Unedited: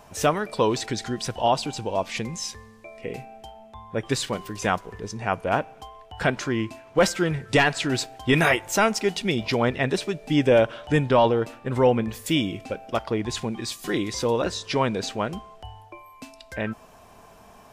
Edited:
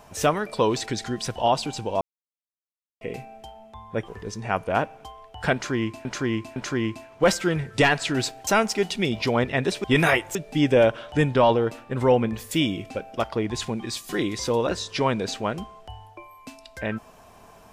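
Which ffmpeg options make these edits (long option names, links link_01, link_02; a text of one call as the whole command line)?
ffmpeg -i in.wav -filter_complex "[0:a]asplit=9[link_01][link_02][link_03][link_04][link_05][link_06][link_07][link_08][link_09];[link_01]atrim=end=2.01,asetpts=PTS-STARTPTS,afade=type=out:start_time=2.006:duration=0.004:curve=hsin[link_10];[link_02]atrim=start=2.01:end=3.01,asetpts=PTS-STARTPTS,volume=0[link_11];[link_03]atrim=start=3.01:end=4.082,asetpts=PTS-STARTPTS,afade=type=in:duration=0.004:curve=hsin[link_12];[link_04]atrim=start=4.848:end=6.822[link_13];[link_05]atrim=start=6.308:end=6.822[link_14];[link_06]atrim=start=6.308:end=8.222[link_15];[link_07]atrim=start=8.728:end=10.102[link_16];[link_08]atrim=start=8.218:end=8.732[link_17];[link_09]atrim=start=10.098[link_18];[link_10][link_11][link_12]concat=n=3:v=0:a=1[link_19];[link_19][link_13]acrossfade=duration=0.004:curve1=hsin:curve2=hsin[link_20];[link_20][link_14]acrossfade=duration=0.004:curve1=hsin:curve2=hsin[link_21];[link_21][link_15]acrossfade=duration=0.004:curve1=hsin:curve2=hsin[link_22];[link_22][link_16]acrossfade=duration=0.004:curve1=hsin:curve2=hsin[link_23];[link_23][link_17]acrossfade=duration=0.004:curve1=hsin:curve2=hsin[link_24];[link_24][link_18]acrossfade=duration=0.004:curve1=hsin:curve2=hsin" out.wav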